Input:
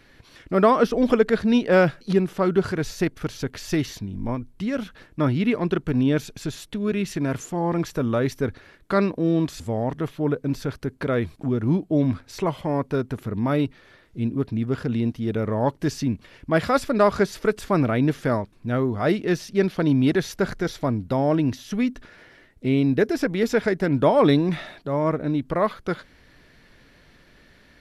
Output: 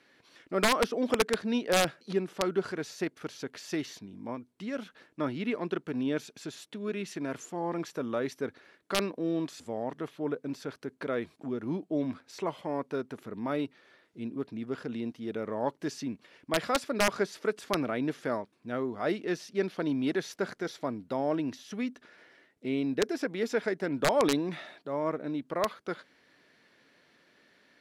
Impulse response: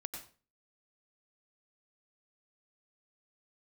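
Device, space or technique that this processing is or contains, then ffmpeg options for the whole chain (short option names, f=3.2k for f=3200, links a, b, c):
overflowing digital effects unit: -af "highpass=250,aeval=exprs='(mod(2.66*val(0)+1,2)-1)/2.66':c=same,lowpass=11k,volume=-7.5dB"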